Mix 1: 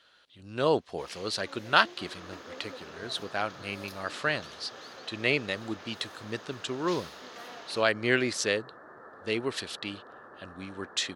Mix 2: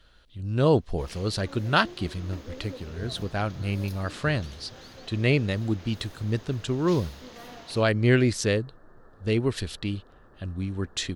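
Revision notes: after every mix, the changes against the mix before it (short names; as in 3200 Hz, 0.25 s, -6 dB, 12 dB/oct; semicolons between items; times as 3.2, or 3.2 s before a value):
second sound -10.0 dB; master: remove weighting filter A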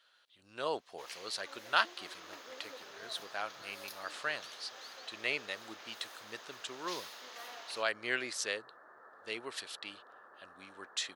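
speech -5.5 dB; second sound +5.0 dB; master: add HPF 820 Hz 12 dB/oct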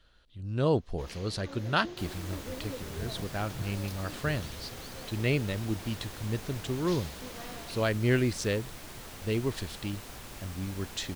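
second sound: remove rippled Chebyshev low-pass 1800 Hz, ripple 6 dB; master: remove HPF 820 Hz 12 dB/oct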